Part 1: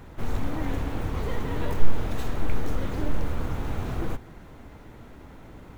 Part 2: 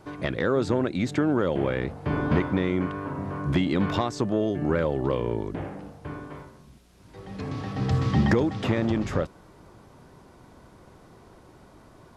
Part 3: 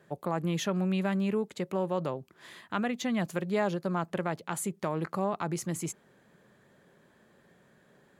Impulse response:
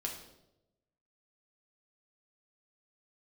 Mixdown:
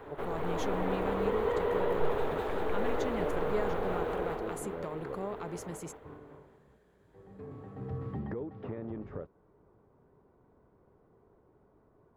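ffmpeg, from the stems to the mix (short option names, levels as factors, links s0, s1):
-filter_complex "[0:a]tiltshelf=f=1500:g=5,aexciter=amount=1.7:drive=5.1:freq=3100,acrossover=split=420 2900:gain=0.1 1 0.141[s0][s1][s2];[s0][s1][s2]amix=inputs=3:normalize=0,volume=1.12,asplit=2[s3][s4];[s4]volume=0.668[s5];[1:a]lowpass=1300,volume=0.188[s6];[2:a]volume=0.335,asplit=2[s7][s8];[s8]apad=whole_len=536470[s9];[s6][s9]sidechaincompress=threshold=0.00501:ratio=8:attack=16:release=224[s10];[s3][s10]amix=inputs=2:normalize=0,alimiter=level_in=1.78:limit=0.0631:level=0:latency=1:release=317,volume=0.562,volume=1[s11];[s5]aecho=0:1:198|396|594|792|990|1188|1386|1584|1782:1|0.58|0.336|0.195|0.113|0.0656|0.0381|0.0221|0.0128[s12];[s7][s11][s12]amix=inputs=3:normalize=0,equalizer=f=430:w=5:g=9"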